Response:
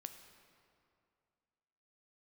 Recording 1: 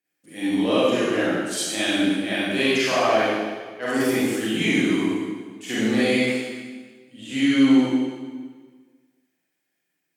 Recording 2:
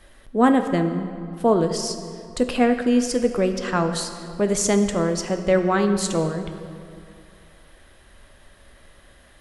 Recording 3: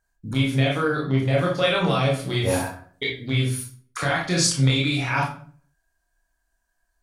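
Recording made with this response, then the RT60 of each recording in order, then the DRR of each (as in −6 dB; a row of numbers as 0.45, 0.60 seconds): 2; 1.5, 2.4, 0.45 seconds; −10.5, 7.0, −3.5 decibels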